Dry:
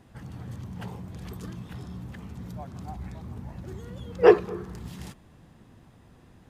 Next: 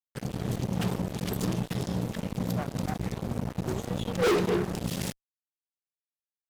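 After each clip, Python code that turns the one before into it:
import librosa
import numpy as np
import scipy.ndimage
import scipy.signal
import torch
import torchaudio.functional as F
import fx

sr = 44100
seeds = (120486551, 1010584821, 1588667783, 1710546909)

y = scipy.signal.sosfilt(scipy.signal.butter(2, 140.0, 'highpass', fs=sr, output='sos'), x)
y = fx.peak_eq(y, sr, hz=1100.0, db=-11.0, octaves=1.8)
y = fx.fuzz(y, sr, gain_db=39.0, gate_db=-45.0)
y = y * librosa.db_to_amplitude(-8.0)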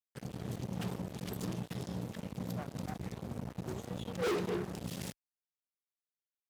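y = scipy.signal.sosfilt(scipy.signal.butter(2, 54.0, 'highpass', fs=sr, output='sos'), x)
y = y * librosa.db_to_amplitude(-9.0)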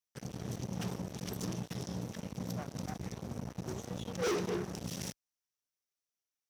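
y = fx.peak_eq(x, sr, hz=5800.0, db=11.0, octaves=0.29)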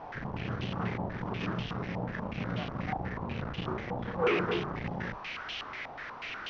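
y = fx.delta_mod(x, sr, bps=32000, step_db=-39.5)
y = fx.doubler(y, sr, ms=35.0, db=-6.5)
y = fx.filter_held_lowpass(y, sr, hz=8.2, low_hz=840.0, high_hz=3000.0)
y = y * librosa.db_to_amplitude(3.0)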